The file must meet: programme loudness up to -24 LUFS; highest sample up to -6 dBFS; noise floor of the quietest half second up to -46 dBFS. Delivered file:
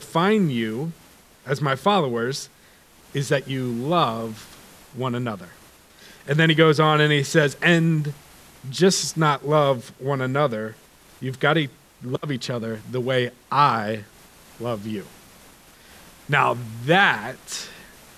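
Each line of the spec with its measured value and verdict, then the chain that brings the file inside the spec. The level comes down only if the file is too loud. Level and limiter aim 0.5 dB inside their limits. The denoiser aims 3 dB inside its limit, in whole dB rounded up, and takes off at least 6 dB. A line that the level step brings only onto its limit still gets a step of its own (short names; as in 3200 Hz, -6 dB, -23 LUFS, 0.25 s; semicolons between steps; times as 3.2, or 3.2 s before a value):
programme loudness -22.0 LUFS: fail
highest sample -4.0 dBFS: fail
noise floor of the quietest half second -53 dBFS: OK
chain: gain -2.5 dB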